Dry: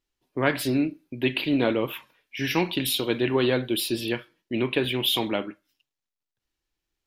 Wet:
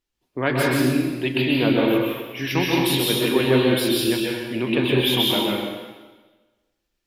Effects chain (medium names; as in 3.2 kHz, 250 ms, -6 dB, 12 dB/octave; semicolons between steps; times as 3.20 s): plate-style reverb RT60 1.3 s, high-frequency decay 0.95×, pre-delay 115 ms, DRR -3 dB